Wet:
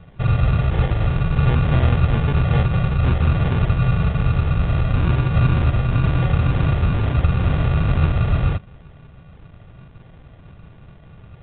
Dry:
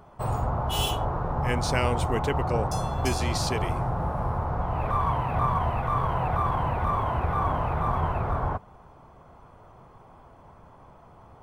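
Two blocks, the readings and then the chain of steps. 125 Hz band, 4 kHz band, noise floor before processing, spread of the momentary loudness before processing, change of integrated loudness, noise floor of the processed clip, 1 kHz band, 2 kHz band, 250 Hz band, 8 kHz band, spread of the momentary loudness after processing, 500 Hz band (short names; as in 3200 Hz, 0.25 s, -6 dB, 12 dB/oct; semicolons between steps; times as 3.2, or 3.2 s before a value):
+12.0 dB, -0.5 dB, -52 dBFS, 4 LU, +8.0 dB, -45 dBFS, -4.0 dB, +5.5 dB, +9.5 dB, under -40 dB, 3 LU, +1.0 dB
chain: resonant low shelf 230 Hz +10.5 dB, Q 1.5; sample-and-hold 34×; A-law 64 kbps 8000 Hz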